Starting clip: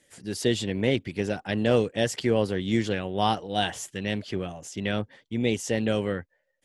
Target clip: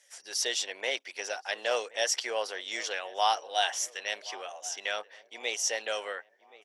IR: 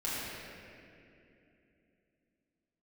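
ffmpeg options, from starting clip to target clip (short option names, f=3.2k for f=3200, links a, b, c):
-filter_complex "[0:a]highpass=f=630:w=0.5412,highpass=f=630:w=1.3066,equalizer=f=5.7k:w=5.2:g=13,asplit=2[a][b];[b]adelay=1075,lowpass=f=1.6k:p=1,volume=-19dB,asplit=2[c][d];[d]adelay=1075,lowpass=f=1.6k:p=1,volume=0.45,asplit=2[e][f];[f]adelay=1075,lowpass=f=1.6k:p=1,volume=0.45,asplit=2[g][h];[h]adelay=1075,lowpass=f=1.6k:p=1,volume=0.45[i];[a][c][e][g][i]amix=inputs=5:normalize=0"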